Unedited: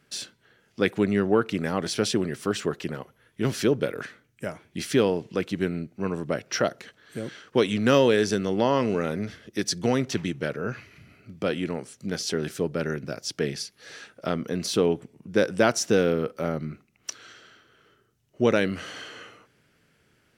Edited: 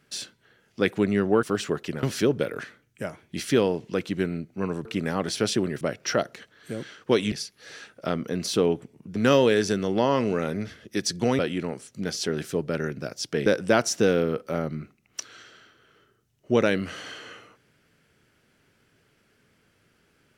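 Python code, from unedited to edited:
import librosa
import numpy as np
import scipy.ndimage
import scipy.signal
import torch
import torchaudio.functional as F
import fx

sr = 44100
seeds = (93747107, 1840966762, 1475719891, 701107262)

y = fx.edit(x, sr, fx.move(start_s=1.43, length_s=0.96, to_s=6.27),
    fx.cut(start_s=2.99, length_s=0.46),
    fx.cut(start_s=10.01, length_s=1.44),
    fx.move(start_s=13.52, length_s=1.84, to_s=7.78), tone=tone)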